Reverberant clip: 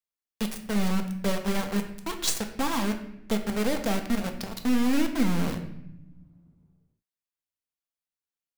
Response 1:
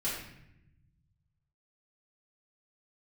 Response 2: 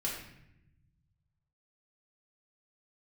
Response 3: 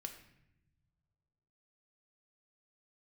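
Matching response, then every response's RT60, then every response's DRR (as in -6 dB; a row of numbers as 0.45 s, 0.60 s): 3; 0.80 s, 0.80 s, no single decay rate; -9.5 dB, -4.5 dB, 4.5 dB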